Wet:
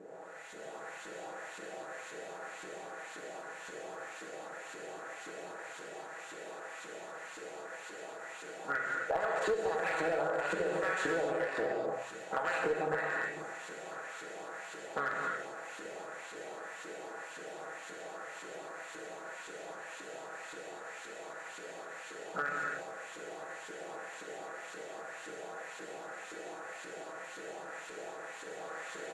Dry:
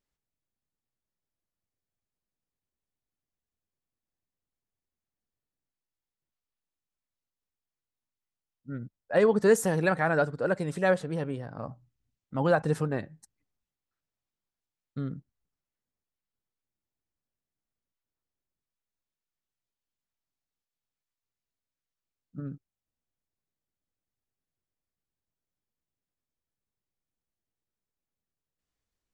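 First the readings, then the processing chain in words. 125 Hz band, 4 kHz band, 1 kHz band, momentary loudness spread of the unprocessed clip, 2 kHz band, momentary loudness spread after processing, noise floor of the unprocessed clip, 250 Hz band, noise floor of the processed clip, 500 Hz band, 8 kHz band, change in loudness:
-18.5 dB, +3.0 dB, +0.5 dB, 18 LU, +1.5 dB, 12 LU, under -85 dBFS, -11.0 dB, -48 dBFS, -5.5 dB, -1.5 dB, -12.5 dB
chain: spectral levelling over time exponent 0.4; level rider gain up to 5.5 dB; LFO band-pass saw up 1.9 Hz 310–3700 Hz; bass shelf 340 Hz -8.5 dB; comb 6.2 ms, depth 62%; gated-style reverb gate 300 ms flat, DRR -1 dB; compression 4:1, threshold -34 dBFS, peak gain reduction 17.5 dB; peaking EQ 7.2 kHz +10.5 dB 0.41 oct; hum notches 60/120 Hz; one-sided clip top -29 dBFS; trim +2 dB

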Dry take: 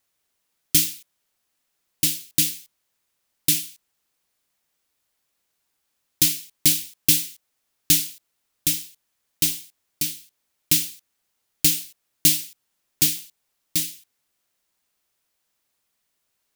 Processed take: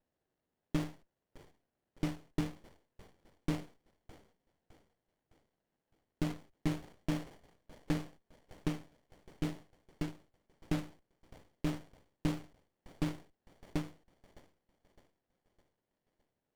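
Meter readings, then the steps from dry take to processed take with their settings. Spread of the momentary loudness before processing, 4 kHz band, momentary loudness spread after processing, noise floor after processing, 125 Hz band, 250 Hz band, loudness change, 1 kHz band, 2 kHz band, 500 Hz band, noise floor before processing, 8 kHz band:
14 LU, -26.0 dB, 9 LU, under -85 dBFS, -3.5 dB, -3.0 dB, -19.0 dB, no reading, -14.0 dB, +2.5 dB, -75 dBFS, -34.5 dB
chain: peak limiter -8 dBFS, peak gain reduction 6.5 dB; band-pass 110–2100 Hz; on a send: feedback echo behind a high-pass 610 ms, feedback 46%, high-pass 1.5 kHz, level -15 dB; on the sum: sliding maximum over 33 samples; trim +1 dB

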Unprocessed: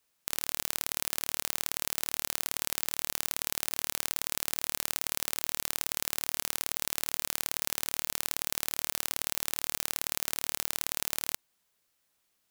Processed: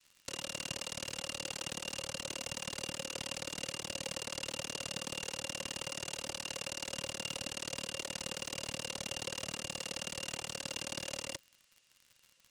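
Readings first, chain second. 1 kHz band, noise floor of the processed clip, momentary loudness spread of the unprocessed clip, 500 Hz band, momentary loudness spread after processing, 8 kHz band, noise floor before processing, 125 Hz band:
-5.0 dB, -69 dBFS, 0 LU, +2.5 dB, 1 LU, -7.0 dB, -76 dBFS, +1.5 dB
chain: resonant low shelf 390 Hz +12 dB, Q 1.5; noise-vocoded speech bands 2; small resonant body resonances 540/2800 Hz, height 15 dB, ringing for 45 ms; crackle 87 per s -41 dBFS; peaking EQ 570 Hz -12 dB 1.9 oct; trim -3.5 dB

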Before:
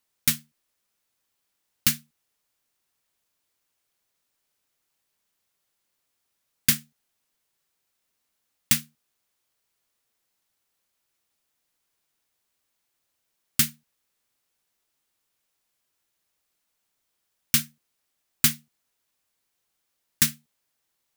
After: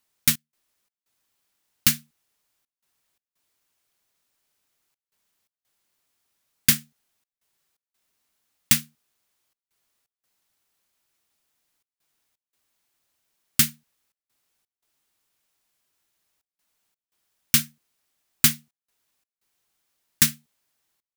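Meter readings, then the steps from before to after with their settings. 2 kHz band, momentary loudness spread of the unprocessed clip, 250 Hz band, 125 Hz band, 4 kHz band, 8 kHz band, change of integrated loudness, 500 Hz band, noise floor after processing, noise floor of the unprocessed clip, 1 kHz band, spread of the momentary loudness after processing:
+2.5 dB, 8 LU, +2.5 dB, +2.5 dB, +2.5 dB, +2.5 dB, +2.5 dB, no reading, under -85 dBFS, -78 dBFS, +2.5 dB, 8 LU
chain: band-stop 510 Hz, Q 15; trance gate "xx.xx.xxxxxxx" 85 bpm -24 dB; trim +2.5 dB

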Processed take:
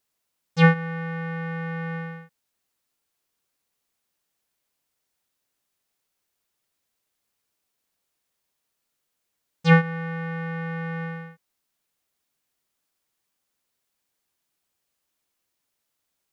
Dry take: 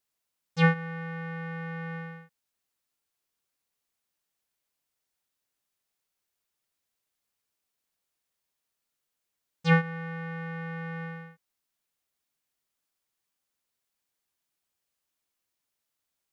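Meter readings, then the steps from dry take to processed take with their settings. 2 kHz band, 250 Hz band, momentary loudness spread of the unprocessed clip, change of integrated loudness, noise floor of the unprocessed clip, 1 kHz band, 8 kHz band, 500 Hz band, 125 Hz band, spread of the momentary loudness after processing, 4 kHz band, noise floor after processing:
+5.0 dB, +6.0 dB, 15 LU, +5.5 dB, -84 dBFS, +5.5 dB, no reading, +6.0 dB, +6.0 dB, 15 LU, +4.5 dB, -79 dBFS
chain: peaking EQ 300 Hz +2 dB 2.9 oct; trim +4.5 dB

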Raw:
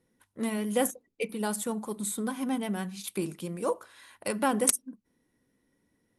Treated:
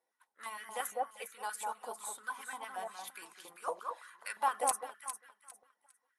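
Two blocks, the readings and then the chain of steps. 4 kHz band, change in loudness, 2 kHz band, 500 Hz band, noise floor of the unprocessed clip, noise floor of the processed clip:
-8.5 dB, -8.0 dB, -3.5 dB, -11.5 dB, -75 dBFS, -85 dBFS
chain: coarse spectral quantiser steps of 15 dB; echo whose repeats swap between lows and highs 202 ms, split 1.5 kHz, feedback 50%, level -3 dB; step-sequenced high-pass 8.7 Hz 720–1600 Hz; trim -9 dB

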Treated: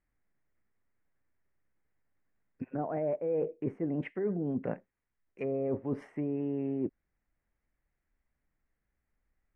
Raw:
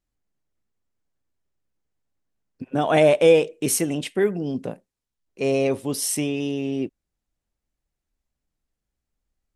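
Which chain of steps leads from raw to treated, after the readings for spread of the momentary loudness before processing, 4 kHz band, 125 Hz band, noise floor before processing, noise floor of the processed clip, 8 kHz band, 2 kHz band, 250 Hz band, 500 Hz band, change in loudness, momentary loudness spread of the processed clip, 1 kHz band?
13 LU, under -30 dB, -8.5 dB, -84 dBFS, -84 dBFS, under -40 dB, -20.0 dB, -8.5 dB, -13.5 dB, -12.5 dB, 7 LU, -14.5 dB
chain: low-pass that closes with the level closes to 700 Hz, closed at -20.5 dBFS; resonant high shelf 2.8 kHz -12 dB, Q 3; reverse; compression 12:1, threshold -29 dBFS, peak gain reduction 18 dB; reverse

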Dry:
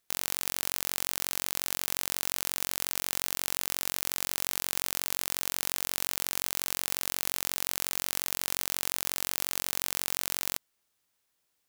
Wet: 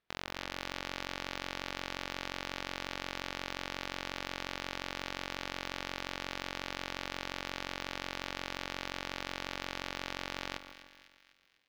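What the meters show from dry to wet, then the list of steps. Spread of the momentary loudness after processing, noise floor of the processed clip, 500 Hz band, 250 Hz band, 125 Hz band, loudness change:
1 LU, -65 dBFS, +1.0 dB, +2.5 dB, 0.0 dB, -9.0 dB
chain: level rider gain up to 5 dB; distance through air 290 m; on a send: two-band feedback delay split 1.7 kHz, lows 150 ms, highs 250 ms, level -12 dB; on the sum: loudspeaker Doppler distortion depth 0.24 ms; trim +1 dB

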